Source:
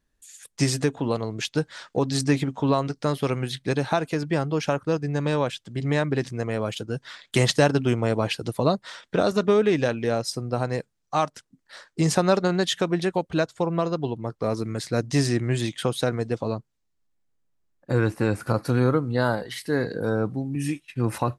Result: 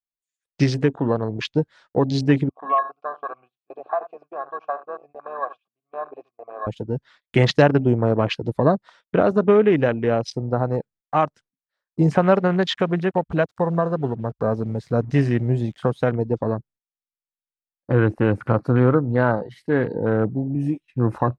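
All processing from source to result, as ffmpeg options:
ffmpeg -i in.wav -filter_complex "[0:a]asettb=1/sr,asplit=3[link_01][link_02][link_03];[link_01]atrim=end=2.494[link_04];[link_02]atrim=start=2.49:end=6.67,asetpts=PTS-STARTPTS,afade=type=in:duration=0.004:curve=qsin,afade=type=out:start_time=4.176:duration=0.004:curve=qsin,asplit=3[link_05][link_06][link_07];[link_05]bandpass=frequency=730:width_type=q:width=8,volume=0dB[link_08];[link_06]bandpass=frequency=1090:width_type=q:width=8,volume=-6dB[link_09];[link_07]bandpass=frequency=2440:width_type=q:width=8,volume=-9dB[link_10];[link_08][link_09][link_10]amix=inputs=3:normalize=0,equalizer=frequency=1100:width=6.1:gain=13.5,aecho=1:1:80:0.2,atrim=end_sample=184338[link_11];[link_03]atrim=start=6.666[link_12];[link_04][link_11]acrossfade=duration=0.004:curve1=hsin:curve2=qsin[link_13];[link_13][link_12]acrossfade=duration=0.004:curve1=qsin:curve2=hsin,asettb=1/sr,asplit=3[link_14][link_15][link_16];[link_14]atrim=end=12.154[link_17];[link_15]atrim=start=12.15:end=16.12,asetpts=PTS-STARTPTS,afade=type=in:duration=0.004:curve=qsin,afade=type=out:start_time=3.966:duration=0.004:curve=qsin,acrusher=bits=6:mix=0:aa=0.5,equalizer=frequency=330:width=6.6:gain=-7.5,acompressor=mode=upward:threshold=-27dB:ratio=2.5:attack=3.2:release=140:knee=2.83:detection=peak[link_18];[link_16]atrim=start=16.116[link_19];[link_17][link_18]acrossfade=duration=0.004:curve1=hsin:curve2=qsin[link_20];[link_20][link_19]acrossfade=duration=0.004:curve1=qsin:curve2=hsin,afwtdn=0.0224,agate=range=-24dB:threshold=-53dB:ratio=16:detection=peak,aemphasis=mode=reproduction:type=50fm,volume=4dB" out.wav

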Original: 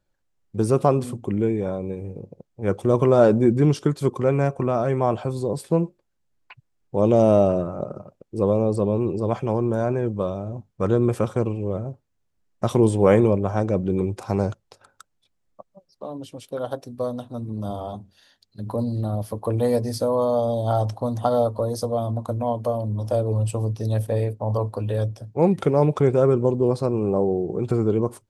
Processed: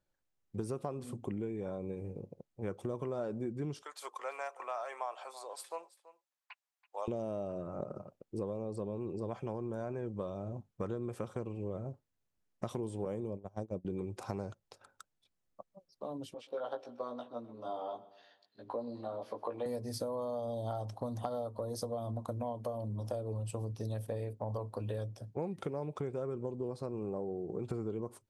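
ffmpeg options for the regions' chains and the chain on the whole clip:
ffmpeg -i in.wav -filter_complex "[0:a]asettb=1/sr,asplit=3[link_01][link_02][link_03];[link_01]atrim=end=3.824[link_04];[link_02]atrim=start=3.82:end=7.08,asetpts=PTS-STARTPTS,afade=type=in:duration=0.004:curve=qsin,afade=type=out:start_time=3.256:duration=0.004:curve=qsin,highpass=frequency=740:width=0.5412,highpass=frequency=740:width=1.3066,bandreject=frequency=1500:width=27,aecho=1:1:331:0.119,atrim=end_sample=143766[link_05];[link_03]atrim=start=7.076[link_06];[link_04][link_05]acrossfade=duration=0.004:curve1=hsin:curve2=qsin[link_07];[link_07][link_06]acrossfade=duration=0.004:curve1=qsin:curve2=hsin,asettb=1/sr,asplit=3[link_08][link_09][link_10];[link_08]atrim=end=13.054[link_11];[link_09]atrim=start=13.05:end=13.85,asetpts=PTS-STARTPTS,afade=type=in:duration=0.004:curve=qsin,afade=type=out:start_time=0.796:duration=0.004:curve=qsin,agate=range=-25dB:threshold=-22dB:ratio=16:release=100:detection=peak,equalizer=frequency=1700:width=0.78:gain=-11[link_12];[link_10]atrim=start=13.846[link_13];[link_11][link_12]acrossfade=duration=0.004:curve1=hsin:curve2=qsin[link_14];[link_14][link_13]acrossfade=duration=0.004:curve1=qsin:curve2=hsin,asettb=1/sr,asplit=3[link_15][link_16][link_17];[link_15]atrim=end=16.344[link_18];[link_16]atrim=start=16.34:end=19.66,asetpts=PTS-STARTPTS,afade=type=in:duration=0.004:curve=qsin,afade=type=out:start_time=3.316:duration=0.004:curve=qsin,highpass=430,lowpass=3400,asplit=2[link_19][link_20];[link_20]adelay=17,volume=-2.5dB[link_21];[link_19][link_21]amix=inputs=2:normalize=0,atrim=end_sample=146412,aecho=1:1:127|254|381|508:0.106|0.0572|0.0309|0.0167,atrim=end_sample=146412[link_22];[link_17]atrim=start=19.656[link_23];[link_18][link_22]acrossfade=duration=0.004:curve1=hsin:curve2=qsin[link_24];[link_24][link_23]acrossfade=duration=0.004:curve1=qsin:curve2=hsin,lowshelf=frequency=110:gain=-4.5,acompressor=threshold=-27dB:ratio=10,volume=-7dB" out.wav

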